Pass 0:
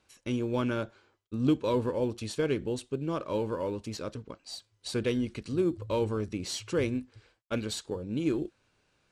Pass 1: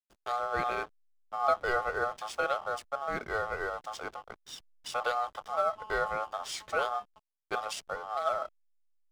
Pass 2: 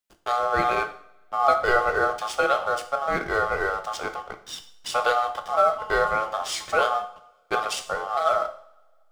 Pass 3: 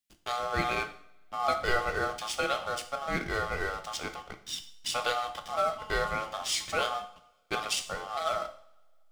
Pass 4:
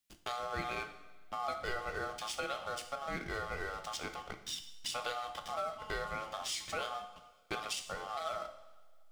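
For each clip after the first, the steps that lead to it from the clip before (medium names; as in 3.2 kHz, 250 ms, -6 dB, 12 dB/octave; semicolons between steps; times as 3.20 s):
ring modulator 970 Hz; hysteresis with a dead band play -44.5 dBFS; trim +1 dB
two-slope reverb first 0.55 s, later 2.1 s, from -27 dB, DRR 6.5 dB; trim +8 dB
high-order bell 780 Hz -9 dB 2.4 oct
compression 2.5:1, threshold -43 dBFS, peak gain reduction 14.5 dB; trim +2.5 dB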